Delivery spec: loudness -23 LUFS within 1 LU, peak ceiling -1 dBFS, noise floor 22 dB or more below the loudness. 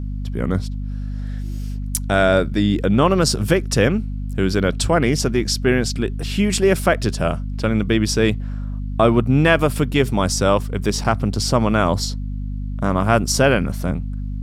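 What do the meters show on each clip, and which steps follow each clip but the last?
hum 50 Hz; highest harmonic 250 Hz; hum level -23 dBFS; loudness -19.5 LUFS; peak level -2.0 dBFS; loudness target -23.0 LUFS
-> hum notches 50/100/150/200/250 Hz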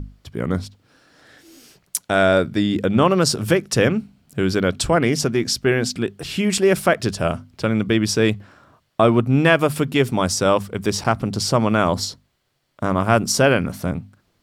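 hum not found; loudness -19.5 LUFS; peak level -2.5 dBFS; loudness target -23.0 LUFS
-> trim -3.5 dB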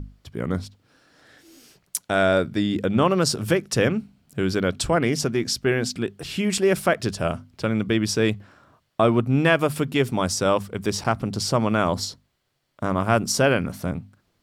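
loudness -23.0 LUFS; peak level -6.0 dBFS; noise floor -70 dBFS

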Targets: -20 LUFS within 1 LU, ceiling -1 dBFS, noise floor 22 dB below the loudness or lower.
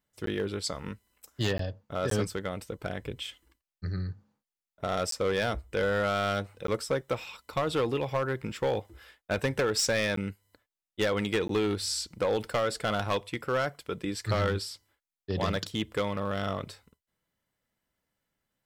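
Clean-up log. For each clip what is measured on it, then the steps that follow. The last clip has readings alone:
clipped samples 1.4%; clipping level -21.5 dBFS; dropouts 7; longest dropout 13 ms; loudness -31.0 LUFS; peak level -21.5 dBFS; loudness target -20.0 LUFS
-> clip repair -21.5 dBFS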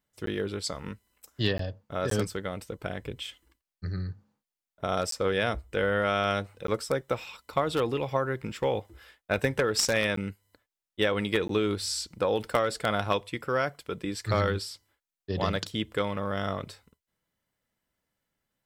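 clipped samples 0.0%; dropouts 7; longest dropout 13 ms
-> interpolate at 0.26/1.58/2.10/5.11/6.67/10.16/11.48 s, 13 ms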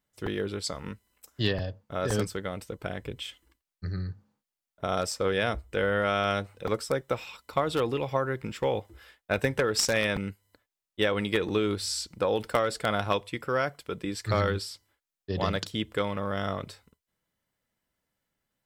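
dropouts 0; loudness -30.0 LUFS; peak level -12.5 dBFS; loudness target -20.0 LUFS
-> trim +10 dB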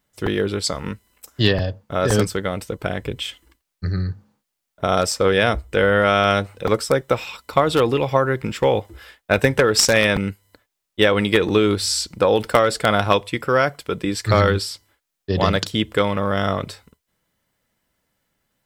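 loudness -20.0 LUFS; peak level -2.5 dBFS; noise floor -79 dBFS

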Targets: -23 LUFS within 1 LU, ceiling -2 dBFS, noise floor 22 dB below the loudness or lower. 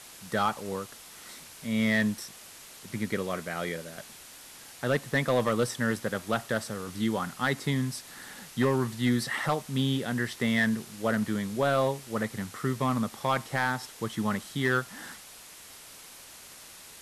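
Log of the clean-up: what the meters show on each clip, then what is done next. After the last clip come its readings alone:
clipped samples 0.4%; clipping level -17.5 dBFS; noise floor -49 dBFS; noise floor target -52 dBFS; loudness -29.5 LUFS; peak level -17.5 dBFS; loudness target -23.0 LUFS
-> clip repair -17.5 dBFS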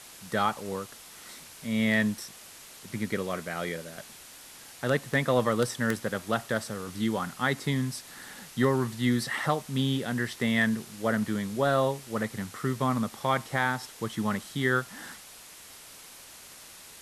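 clipped samples 0.0%; noise floor -49 dBFS; noise floor target -51 dBFS
-> noise reduction 6 dB, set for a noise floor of -49 dBFS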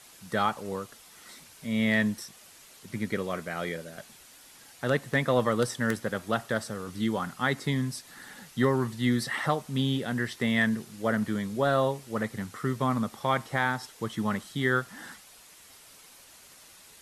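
noise floor -53 dBFS; loudness -29.0 LUFS; peak level -9.0 dBFS; loudness target -23.0 LUFS
-> trim +6 dB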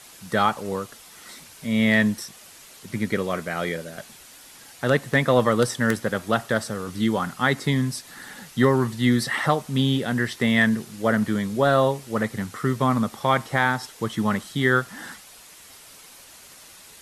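loudness -23.0 LUFS; peak level -3.0 dBFS; noise floor -47 dBFS

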